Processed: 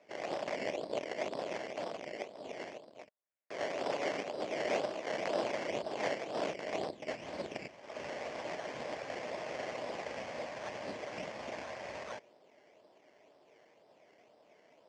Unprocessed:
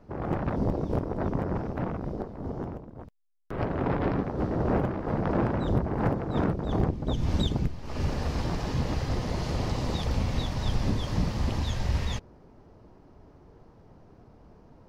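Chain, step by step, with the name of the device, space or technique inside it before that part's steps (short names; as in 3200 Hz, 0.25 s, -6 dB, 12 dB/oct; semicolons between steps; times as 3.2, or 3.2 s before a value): circuit-bent sampling toy (decimation with a swept rate 14×, swing 60% 2 Hz; speaker cabinet 520–5900 Hz, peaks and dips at 610 Hz +8 dB, 910 Hz -3 dB, 1300 Hz -6 dB, 2100 Hz +4 dB, 3800 Hz -9 dB); gain -4 dB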